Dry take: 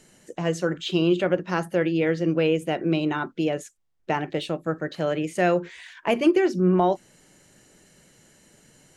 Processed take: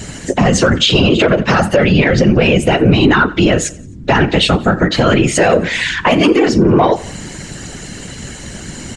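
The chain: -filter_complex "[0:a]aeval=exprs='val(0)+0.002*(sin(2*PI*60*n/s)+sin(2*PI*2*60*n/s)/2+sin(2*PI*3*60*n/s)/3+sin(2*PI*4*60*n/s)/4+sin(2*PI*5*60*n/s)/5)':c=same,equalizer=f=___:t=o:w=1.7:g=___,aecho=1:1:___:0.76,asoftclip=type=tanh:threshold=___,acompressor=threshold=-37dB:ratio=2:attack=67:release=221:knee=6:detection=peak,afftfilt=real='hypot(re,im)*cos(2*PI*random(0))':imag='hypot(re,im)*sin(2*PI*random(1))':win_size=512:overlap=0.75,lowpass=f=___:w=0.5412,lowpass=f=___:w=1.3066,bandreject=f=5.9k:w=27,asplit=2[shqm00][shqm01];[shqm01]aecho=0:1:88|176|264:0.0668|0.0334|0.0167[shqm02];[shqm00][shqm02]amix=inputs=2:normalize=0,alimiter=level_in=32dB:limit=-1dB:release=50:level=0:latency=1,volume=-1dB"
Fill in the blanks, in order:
460, -3.5, 7.5, -13.5dB, 8.3k, 8.3k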